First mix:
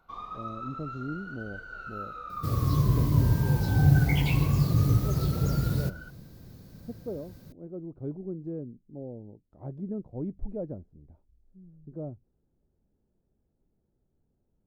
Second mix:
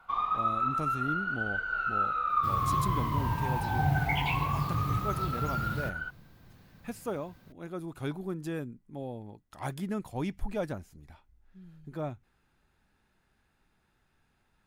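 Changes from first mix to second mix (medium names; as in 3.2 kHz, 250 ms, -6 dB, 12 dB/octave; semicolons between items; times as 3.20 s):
speech: remove Chebyshev low-pass 590 Hz, order 2; second sound -8.5 dB; master: add high-order bell 1.6 kHz +10.5 dB 2.5 oct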